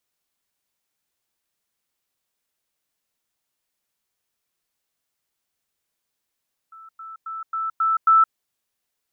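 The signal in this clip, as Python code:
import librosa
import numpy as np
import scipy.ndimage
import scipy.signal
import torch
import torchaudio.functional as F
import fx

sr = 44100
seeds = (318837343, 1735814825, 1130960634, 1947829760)

y = fx.level_ladder(sr, hz=1320.0, from_db=-41.0, step_db=6.0, steps=6, dwell_s=0.17, gap_s=0.1)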